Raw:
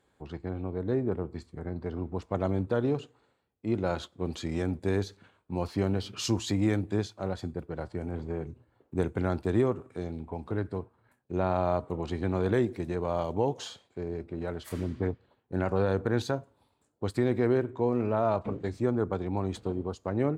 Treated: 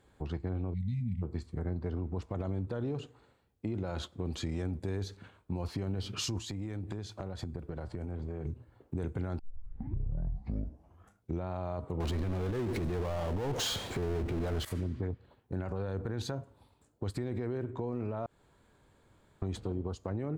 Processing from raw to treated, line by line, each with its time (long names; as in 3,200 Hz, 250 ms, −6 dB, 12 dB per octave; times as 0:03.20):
0:00.74–0:01.23: time-frequency box erased 250–1,900 Hz
0:06.38–0:08.45: downward compressor 10 to 1, threshold −39 dBFS
0:09.39: tape start 2.09 s
0:12.00–0:14.65: power curve on the samples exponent 0.5
0:18.26–0:19.42: fill with room tone
whole clip: low-shelf EQ 110 Hz +11.5 dB; brickwall limiter −23 dBFS; downward compressor 2.5 to 1, threshold −37 dBFS; level +3 dB